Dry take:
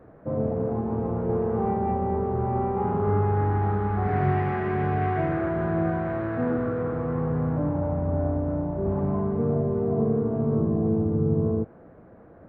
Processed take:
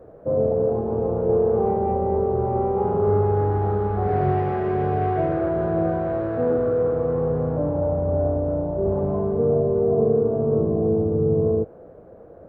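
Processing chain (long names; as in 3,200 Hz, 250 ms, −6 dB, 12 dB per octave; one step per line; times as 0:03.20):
octave-band graphic EQ 125/250/500/1,000/2,000 Hz −3/−6/+8/−4/−9 dB
level +3.5 dB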